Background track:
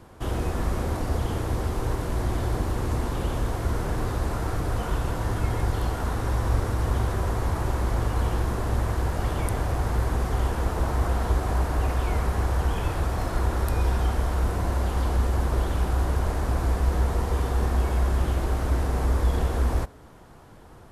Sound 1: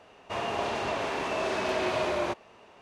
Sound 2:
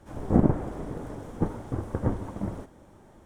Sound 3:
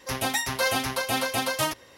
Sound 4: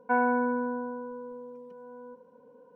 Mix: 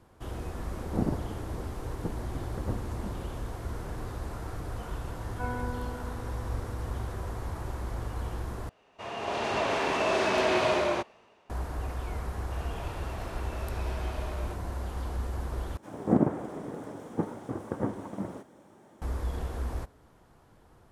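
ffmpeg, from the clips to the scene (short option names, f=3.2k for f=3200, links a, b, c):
-filter_complex "[2:a]asplit=2[a][b];[1:a]asplit=2[c][d];[0:a]volume=-10dB[e];[c]dynaudnorm=f=120:g=11:m=13dB[f];[b]highpass=170[g];[e]asplit=3[h][i][j];[h]atrim=end=8.694[k];[f]atrim=end=2.81,asetpts=PTS-STARTPTS,volume=-9dB[l];[i]atrim=start=11.496:end=15.774[m];[g]atrim=end=3.25,asetpts=PTS-STARTPTS,volume=-1dB[n];[j]atrim=start=19.016[o];[a]atrim=end=3.25,asetpts=PTS-STARTPTS,volume=-8.5dB,afade=t=in:d=0.004:c=hsin,afade=t=out:st=3.246:d=0.004:c=hsin,adelay=630[p];[4:a]atrim=end=2.75,asetpts=PTS-STARTPTS,volume=-11.5dB,afade=t=in:d=0.004:c=hsin,afade=t=out:st=2.746:d=0.004:c=hsin,adelay=5300[q];[d]atrim=end=2.81,asetpts=PTS-STARTPTS,volume=-14.5dB,afade=t=in:d=0.004:c=hsin,afade=t=out:st=2.806:d=0.004:c=hsin,adelay=12210[r];[k][l]acrossfade=d=0.004:c1=hsin:c2=hsin[s];[s][m]acrossfade=d=0.004:c1=hsin:c2=hsin[t];[t][n]acrossfade=d=0.004:c1=hsin:c2=hsin[u];[u][o]acrossfade=d=0.004:c1=hsin:c2=hsin[v];[v][p][q][r]amix=inputs=4:normalize=0"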